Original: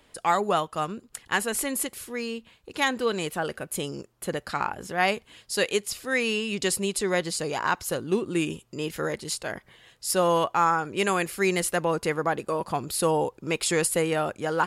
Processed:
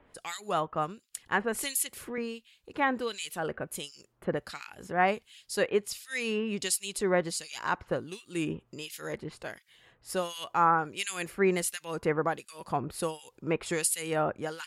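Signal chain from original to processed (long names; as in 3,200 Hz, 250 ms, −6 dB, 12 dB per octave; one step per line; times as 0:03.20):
two-band tremolo in antiphase 1.4 Hz, depth 100%, crossover 2,200 Hz
0:01.63–0:02.18: multiband upward and downward compressor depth 70%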